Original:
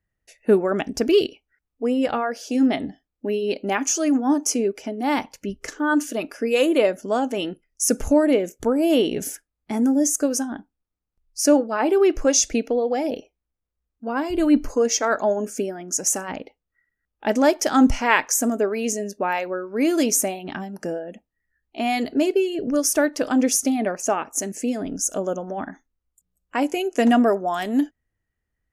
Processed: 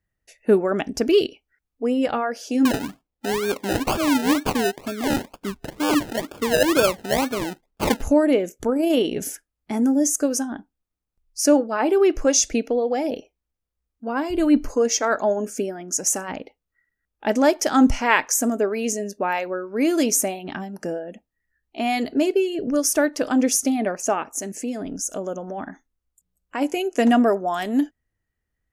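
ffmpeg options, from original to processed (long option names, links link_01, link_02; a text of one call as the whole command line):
ffmpeg -i in.wav -filter_complex "[0:a]asettb=1/sr,asplit=3[link_01][link_02][link_03];[link_01]atrim=end=2.654[link_04];[link_02]atrim=start=2.65:end=8.02,asetpts=PTS-STARTPTS,afade=type=in:duration=0.004:curve=qsin,afade=type=out:start_time=5.366:duration=0.004:curve=qsin,acrusher=samples=31:mix=1:aa=0.000001:lfo=1:lforange=18.6:lforate=2.1[link_05];[link_03]atrim=start=8.016[link_06];[link_04][link_05]acrossfade=duration=0.004:curve1=hsin:curve2=qsin[link_07];[link_07][link_06]acrossfade=duration=0.004:curve1=qsin:curve2=hsin,asettb=1/sr,asplit=3[link_08][link_09][link_10];[link_08]atrim=end=8.664[link_11];[link_09]atrim=start=8.66:end=9.16,asetpts=PTS-STARTPTS,afade=type=in:duration=0.004:curve=qsin,afade=type=out:start_time=0.496:duration=0.004:curve=qsin,tremolo=f=28:d=0.261[link_12];[link_10]atrim=start=9.156[link_13];[link_11][link_12]acrossfade=duration=0.004:curve1=hsin:curve2=qsin[link_14];[link_14][link_13]acrossfade=duration=0.004:curve1=qsin:curve2=hsin,asplit=3[link_15][link_16][link_17];[link_15]afade=type=out:start_time=24.34:duration=0.02[link_18];[link_16]acompressor=threshold=-29dB:ratio=1.5:attack=3.2:release=140:knee=1:detection=peak,afade=type=in:start_time=24.34:duration=0.02,afade=type=out:start_time=26.6:duration=0.02[link_19];[link_17]afade=type=in:start_time=26.6:duration=0.02[link_20];[link_18][link_19][link_20]amix=inputs=3:normalize=0" out.wav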